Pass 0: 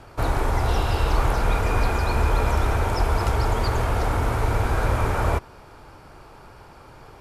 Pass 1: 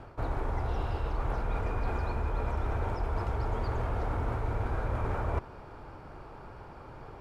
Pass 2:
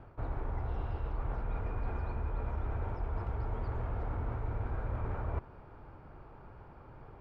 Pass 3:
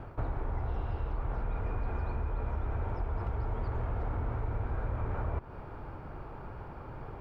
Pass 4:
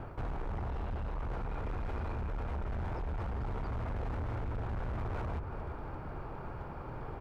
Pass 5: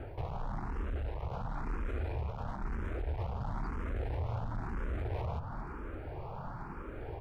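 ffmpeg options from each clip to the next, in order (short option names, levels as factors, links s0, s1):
-af "lowpass=f=1400:p=1,areverse,acompressor=threshold=0.0398:ratio=6,areverse"
-af "bass=f=250:g=4,treble=f=4000:g=-13,volume=0.422"
-af "acompressor=threshold=0.0126:ratio=6,volume=2.66"
-filter_complex "[0:a]bandreject=f=50:t=h:w=6,bandreject=f=100:t=h:w=6,asplit=2[s0][s1];[s1]adelay=338.2,volume=0.282,highshelf=f=4000:g=-7.61[s2];[s0][s2]amix=inputs=2:normalize=0,volume=56.2,asoftclip=hard,volume=0.0178,volume=1.19"
-filter_complex "[0:a]asplit=2[s0][s1];[s1]afreqshift=1[s2];[s0][s2]amix=inputs=2:normalize=1,volume=1.41"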